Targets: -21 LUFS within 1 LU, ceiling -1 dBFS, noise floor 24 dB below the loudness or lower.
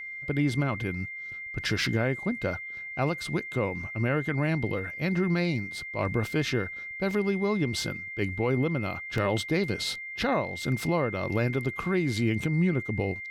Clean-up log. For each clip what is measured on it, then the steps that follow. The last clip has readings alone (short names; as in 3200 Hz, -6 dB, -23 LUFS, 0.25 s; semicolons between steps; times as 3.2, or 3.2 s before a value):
dropouts 3; longest dropout 1.5 ms; steady tone 2100 Hz; tone level -36 dBFS; loudness -29.0 LUFS; peak -15.5 dBFS; loudness target -21.0 LUFS
-> interpolate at 7.11/9.18/11.53, 1.5 ms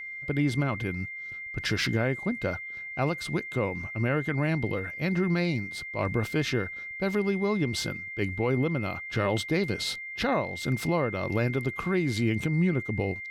dropouts 0; steady tone 2100 Hz; tone level -36 dBFS
-> notch 2100 Hz, Q 30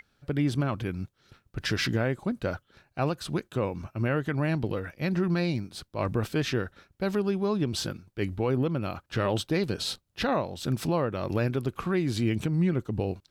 steady tone none; loudness -29.5 LUFS; peak -16.5 dBFS; loudness target -21.0 LUFS
-> gain +8.5 dB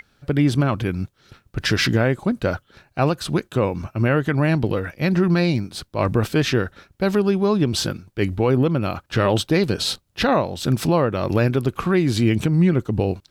loudness -21.0 LUFS; peak -8.0 dBFS; noise floor -64 dBFS